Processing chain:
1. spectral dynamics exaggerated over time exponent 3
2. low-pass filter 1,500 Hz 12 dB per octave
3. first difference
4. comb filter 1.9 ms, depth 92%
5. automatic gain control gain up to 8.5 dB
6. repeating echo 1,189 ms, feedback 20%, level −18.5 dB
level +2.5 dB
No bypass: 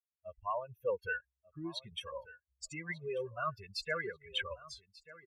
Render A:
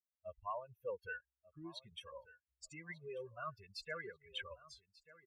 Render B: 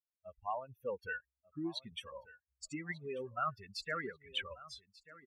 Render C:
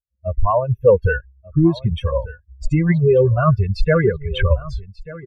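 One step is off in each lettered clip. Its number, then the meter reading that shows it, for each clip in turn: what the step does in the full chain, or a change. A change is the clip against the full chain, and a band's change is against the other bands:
5, 1 kHz band +1.5 dB
4, 250 Hz band +5.5 dB
3, 125 Hz band +18.0 dB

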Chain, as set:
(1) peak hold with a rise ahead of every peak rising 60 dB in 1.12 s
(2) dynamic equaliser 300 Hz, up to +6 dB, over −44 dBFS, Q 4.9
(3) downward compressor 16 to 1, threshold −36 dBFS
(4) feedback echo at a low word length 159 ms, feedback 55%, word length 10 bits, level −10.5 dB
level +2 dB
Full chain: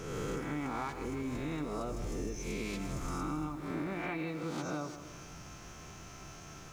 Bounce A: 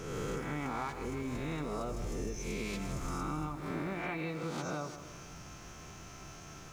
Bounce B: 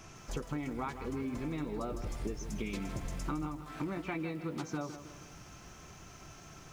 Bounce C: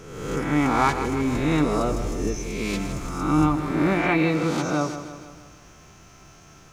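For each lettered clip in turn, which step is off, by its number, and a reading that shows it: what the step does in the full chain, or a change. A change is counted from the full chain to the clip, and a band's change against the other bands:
2, 250 Hz band −2.0 dB
1, change in momentary loudness spread +2 LU
3, average gain reduction 9.0 dB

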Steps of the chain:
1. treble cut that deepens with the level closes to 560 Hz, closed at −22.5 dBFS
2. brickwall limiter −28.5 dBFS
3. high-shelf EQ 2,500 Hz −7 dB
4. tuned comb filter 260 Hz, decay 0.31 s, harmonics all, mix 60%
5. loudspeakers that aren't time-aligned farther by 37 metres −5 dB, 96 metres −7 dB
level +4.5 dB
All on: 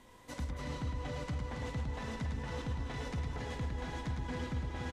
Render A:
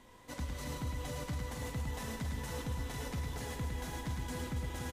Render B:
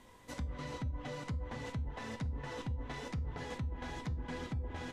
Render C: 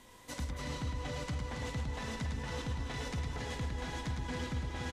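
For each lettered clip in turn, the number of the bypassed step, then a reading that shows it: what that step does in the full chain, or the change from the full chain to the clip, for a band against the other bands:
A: 1, 8 kHz band +9.0 dB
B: 5, echo-to-direct ratio −3.0 dB to none audible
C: 3, 8 kHz band +5.5 dB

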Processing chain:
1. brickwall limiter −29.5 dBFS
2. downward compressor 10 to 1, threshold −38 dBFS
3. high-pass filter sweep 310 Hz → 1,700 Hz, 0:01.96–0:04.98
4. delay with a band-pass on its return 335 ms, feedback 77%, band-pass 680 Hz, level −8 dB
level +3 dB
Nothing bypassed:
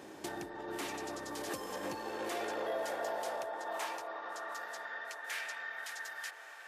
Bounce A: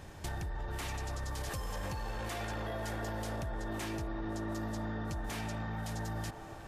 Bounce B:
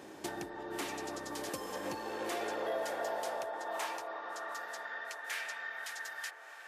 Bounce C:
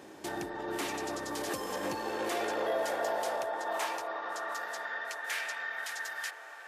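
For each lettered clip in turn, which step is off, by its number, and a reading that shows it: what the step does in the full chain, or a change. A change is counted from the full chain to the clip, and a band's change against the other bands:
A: 3, 125 Hz band +23.0 dB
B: 1, average gain reduction 7.5 dB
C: 2, average gain reduction 4.5 dB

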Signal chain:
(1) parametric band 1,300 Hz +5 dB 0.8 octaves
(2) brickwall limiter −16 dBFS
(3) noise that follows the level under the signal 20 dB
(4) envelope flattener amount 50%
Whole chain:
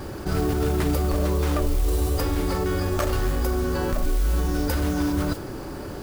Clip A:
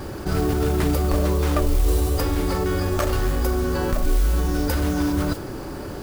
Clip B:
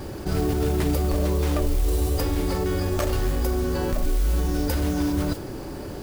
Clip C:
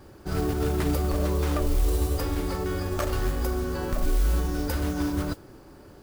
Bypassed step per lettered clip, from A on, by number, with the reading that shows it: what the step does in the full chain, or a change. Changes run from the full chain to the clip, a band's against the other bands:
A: 2, change in integrated loudness +2.0 LU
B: 1, 2 kHz band −2.5 dB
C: 4, change in integrated loudness −2.5 LU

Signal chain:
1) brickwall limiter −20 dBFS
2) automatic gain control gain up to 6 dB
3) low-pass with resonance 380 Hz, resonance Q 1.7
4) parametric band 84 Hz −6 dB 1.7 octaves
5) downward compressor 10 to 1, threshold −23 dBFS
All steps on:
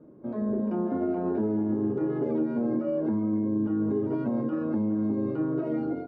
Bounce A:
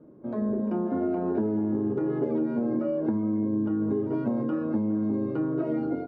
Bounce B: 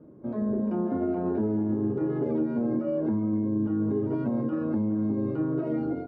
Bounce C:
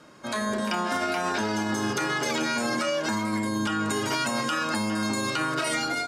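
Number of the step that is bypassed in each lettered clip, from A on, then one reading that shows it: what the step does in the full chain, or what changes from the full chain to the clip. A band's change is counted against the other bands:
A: 1, average gain reduction 2.0 dB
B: 4, 125 Hz band +3.0 dB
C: 3, 1 kHz band +15.0 dB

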